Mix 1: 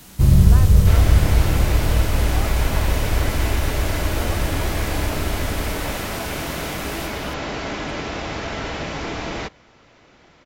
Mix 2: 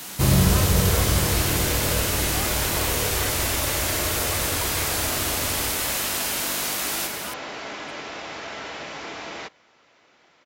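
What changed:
first sound +9.5 dB; second sound -4.0 dB; master: add HPF 590 Hz 6 dB/oct

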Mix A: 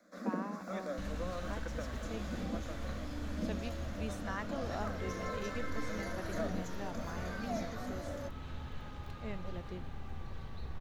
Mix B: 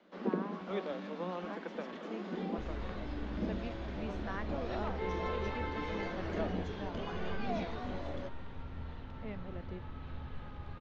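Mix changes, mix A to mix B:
first sound: remove fixed phaser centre 590 Hz, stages 8; second sound: entry +1.60 s; master: add air absorption 220 m

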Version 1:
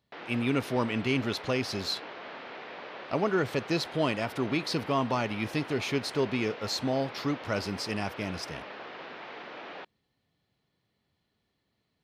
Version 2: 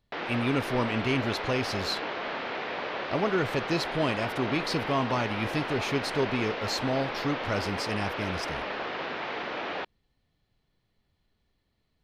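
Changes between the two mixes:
background +9.0 dB; master: remove HPF 110 Hz 12 dB/oct

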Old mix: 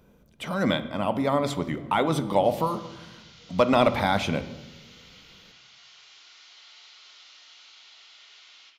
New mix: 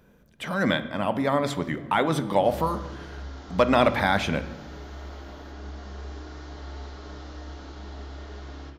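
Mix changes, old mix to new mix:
background: remove resonant high-pass 2500 Hz, resonance Q 1.9; master: add bell 1700 Hz +10 dB 0.29 oct

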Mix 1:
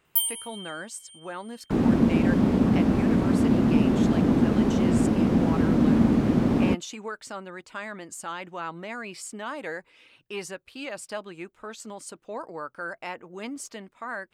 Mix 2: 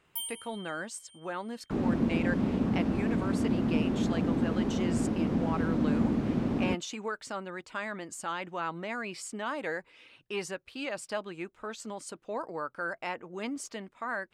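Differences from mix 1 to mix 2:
first sound -7.0 dB; second sound -7.5 dB; master: add high shelf 11000 Hz -10 dB

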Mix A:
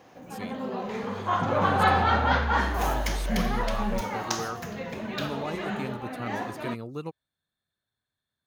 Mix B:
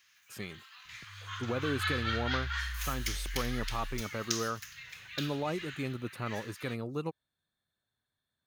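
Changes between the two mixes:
first sound: add Bessel high-pass 2500 Hz, order 8; second sound -8.5 dB

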